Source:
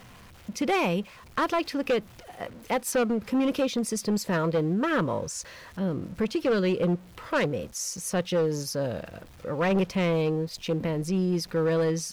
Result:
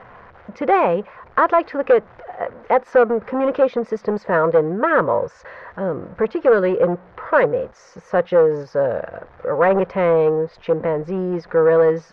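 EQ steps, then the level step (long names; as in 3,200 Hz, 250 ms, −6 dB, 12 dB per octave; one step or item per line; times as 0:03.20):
low-pass filter 3,000 Hz 6 dB per octave
high-frequency loss of the air 210 metres
flat-topped bell 890 Hz +13 dB 2.6 octaves
0.0 dB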